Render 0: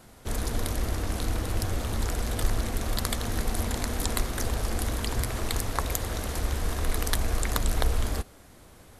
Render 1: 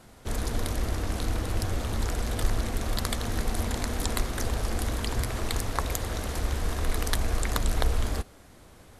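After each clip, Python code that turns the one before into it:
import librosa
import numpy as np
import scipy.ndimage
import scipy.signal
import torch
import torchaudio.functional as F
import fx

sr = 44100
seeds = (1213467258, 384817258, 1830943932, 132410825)

y = fx.high_shelf(x, sr, hz=12000.0, db=-7.5)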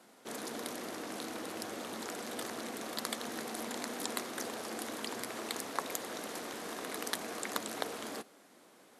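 y = scipy.signal.sosfilt(scipy.signal.butter(4, 220.0, 'highpass', fs=sr, output='sos'), x)
y = F.gain(torch.from_numpy(y), -5.5).numpy()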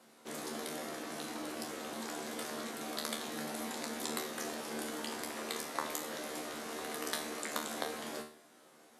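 y = fx.comb_fb(x, sr, f0_hz=76.0, decay_s=0.46, harmonics='all', damping=0.0, mix_pct=90)
y = F.gain(torch.from_numpy(y), 9.0).numpy()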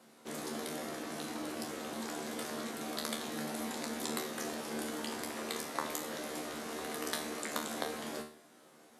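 y = fx.low_shelf(x, sr, hz=240.0, db=5.5)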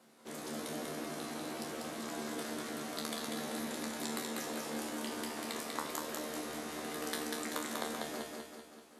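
y = fx.echo_feedback(x, sr, ms=193, feedback_pct=52, wet_db=-3.0)
y = F.gain(torch.from_numpy(y), -3.0).numpy()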